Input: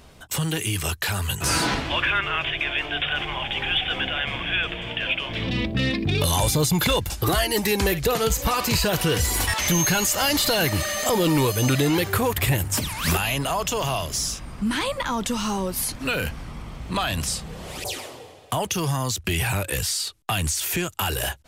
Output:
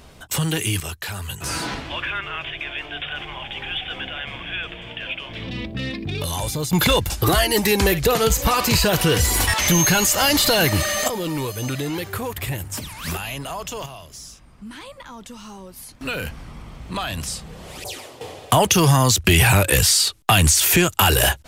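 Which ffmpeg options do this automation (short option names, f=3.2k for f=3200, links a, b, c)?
-af "asetnsamples=n=441:p=0,asendcmd='0.8 volume volume -4.5dB;6.73 volume volume 4dB;11.08 volume volume -5.5dB;13.86 volume volume -13dB;16.01 volume volume -2dB;18.21 volume volume 9.5dB',volume=3dB"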